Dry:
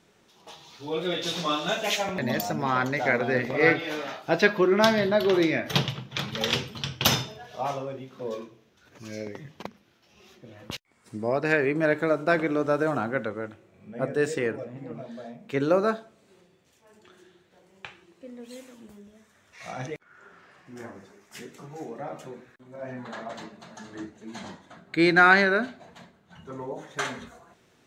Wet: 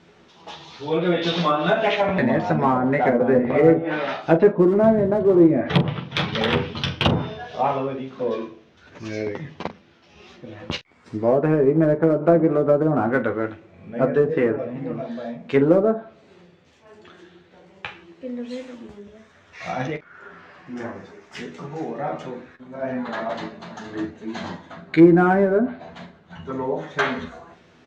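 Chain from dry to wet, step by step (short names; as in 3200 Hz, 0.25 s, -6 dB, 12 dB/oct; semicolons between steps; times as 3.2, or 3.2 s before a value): air absorption 170 m; treble ducked by the level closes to 540 Hz, closed at -20.5 dBFS; in parallel at -12 dB: hard clip -23.5 dBFS, distortion -11 dB; on the sum: high shelf 5300 Hz +4.5 dB; early reflections 12 ms -5 dB, 45 ms -13 dB; gain +6.5 dB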